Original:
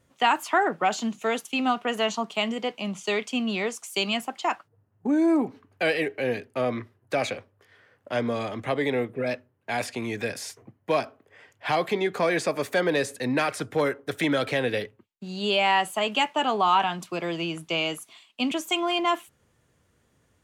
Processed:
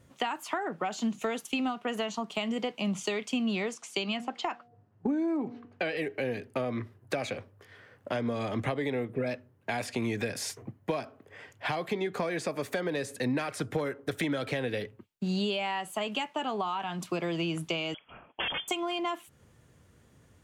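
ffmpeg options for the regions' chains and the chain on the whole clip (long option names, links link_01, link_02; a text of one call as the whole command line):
ffmpeg -i in.wav -filter_complex "[0:a]asettb=1/sr,asplit=3[link_01][link_02][link_03];[link_01]atrim=end=3.744[link_04];[link_02]atrim=start=3.74:end=5.97,asetpts=PTS-STARTPTS,afade=type=in:duration=0.004:curve=qsin,afade=type=out:start_time=2.226:duration=0.004:curve=qsin,highpass=130,lowpass=5200,bandreject=frequency=239.2:width_type=h:width=4,bandreject=frequency=478.4:width_type=h:width=4,bandreject=frequency=717.6:width_type=h:width=4[link_05];[link_03]atrim=start=5.966[link_06];[link_04][link_05]acrossfade=duration=0.004:curve1=hsin:curve2=qsin[link_07];[link_07][link_06]acrossfade=duration=0.004:curve1=qsin:curve2=hsin,asettb=1/sr,asplit=3[link_08][link_09][link_10];[link_08]atrim=end=17.944[link_11];[link_09]atrim=start=17.94:end=18.68,asetpts=PTS-STARTPTS,afade=type=in:duration=0.004:curve=qsin,afade=type=out:start_time=0.736:duration=0.004:curve=qsin,aeval=exprs='(mod(15*val(0)+1,2)-1)/15':channel_layout=same,lowpass=frequency=3000:width_type=q:width=0.5098,lowpass=frequency=3000:width_type=q:width=0.6013,lowpass=frequency=3000:width_type=q:width=0.9,lowpass=frequency=3000:width_type=q:width=2.563,afreqshift=-3500[link_12];[link_10]atrim=start=18.676[link_13];[link_11][link_12]acrossfade=duration=0.004:curve1=hsin:curve2=qsin[link_14];[link_14][link_13]acrossfade=duration=0.004:curve1=qsin:curve2=hsin,lowshelf=frequency=68:gain=-11.5,acompressor=threshold=-33dB:ratio=10,lowshelf=frequency=190:gain=11,volume=3dB" out.wav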